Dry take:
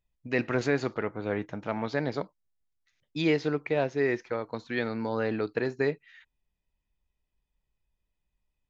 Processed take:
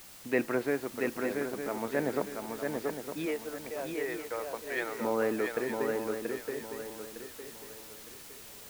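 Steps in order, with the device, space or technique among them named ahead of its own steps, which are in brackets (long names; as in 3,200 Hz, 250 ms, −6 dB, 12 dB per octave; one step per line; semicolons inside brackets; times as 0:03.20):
0:03.25–0:05.00: high-pass filter 360 Hz → 740 Hz 12 dB per octave
shortwave radio (band-pass filter 280–2,600 Hz; amplitude tremolo 0.41 Hz, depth 73%; white noise bed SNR 12 dB)
low-shelf EQ 400 Hz +6 dB
feedback echo with a long and a short gap by turns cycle 909 ms, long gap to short 3 to 1, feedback 32%, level −4 dB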